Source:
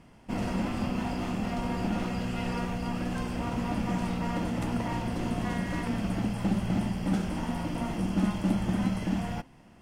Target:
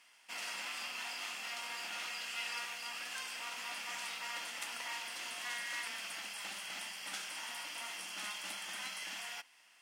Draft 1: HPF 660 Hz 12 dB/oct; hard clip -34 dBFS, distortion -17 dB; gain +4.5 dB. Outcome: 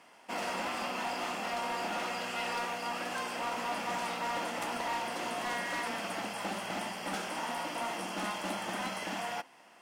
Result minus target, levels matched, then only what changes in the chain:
500 Hz band +13.0 dB
change: HPF 2200 Hz 12 dB/oct

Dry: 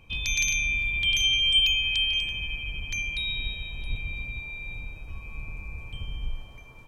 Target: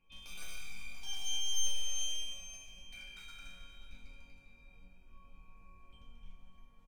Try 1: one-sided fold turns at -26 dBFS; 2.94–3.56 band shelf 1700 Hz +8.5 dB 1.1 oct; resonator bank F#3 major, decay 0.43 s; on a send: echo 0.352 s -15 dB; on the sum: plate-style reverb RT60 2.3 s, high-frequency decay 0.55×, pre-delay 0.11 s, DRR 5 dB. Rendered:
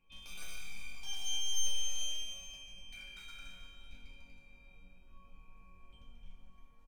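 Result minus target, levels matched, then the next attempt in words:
echo 0.18 s early
one-sided fold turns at -26 dBFS; 2.94–3.56 band shelf 1700 Hz +8.5 dB 1.1 oct; resonator bank F#3 major, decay 0.43 s; on a send: echo 0.532 s -15 dB; on the sum: plate-style reverb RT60 2.3 s, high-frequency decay 0.55×, pre-delay 0.11 s, DRR 5 dB

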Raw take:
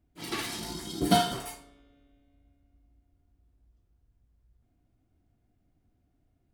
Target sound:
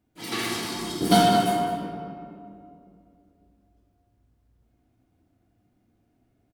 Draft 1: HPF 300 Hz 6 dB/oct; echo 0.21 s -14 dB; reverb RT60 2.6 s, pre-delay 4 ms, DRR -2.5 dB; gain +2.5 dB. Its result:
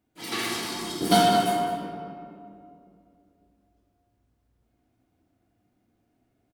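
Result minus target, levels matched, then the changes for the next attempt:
125 Hz band -3.0 dB
change: HPF 140 Hz 6 dB/oct

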